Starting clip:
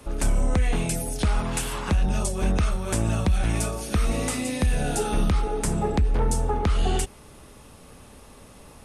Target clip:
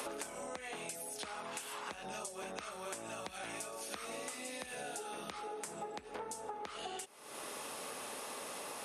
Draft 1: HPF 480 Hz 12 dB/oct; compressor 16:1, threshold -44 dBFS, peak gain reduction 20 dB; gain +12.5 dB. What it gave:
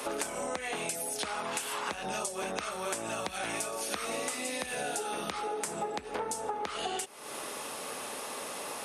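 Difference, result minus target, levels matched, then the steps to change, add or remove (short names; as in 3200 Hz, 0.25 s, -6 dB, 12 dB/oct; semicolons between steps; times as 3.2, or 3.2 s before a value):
compressor: peak gain reduction -9 dB
change: compressor 16:1, threshold -53.5 dBFS, peak gain reduction 29 dB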